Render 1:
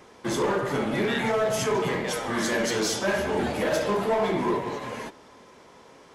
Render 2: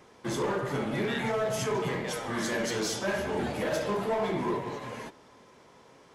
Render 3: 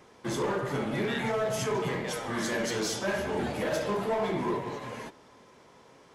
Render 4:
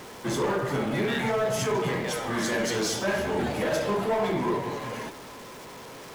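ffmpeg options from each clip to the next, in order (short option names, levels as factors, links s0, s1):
-af "equalizer=f=130:w=2.2:g=4.5,volume=0.562"
-af anull
-af "aeval=exprs='val(0)+0.5*0.00794*sgn(val(0))':c=same,volume=1.33"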